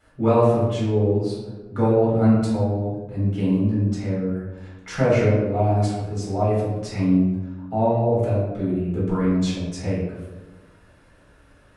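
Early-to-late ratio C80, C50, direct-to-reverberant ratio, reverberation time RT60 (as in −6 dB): 3.5 dB, 0.5 dB, −8.5 dB, 1.2 s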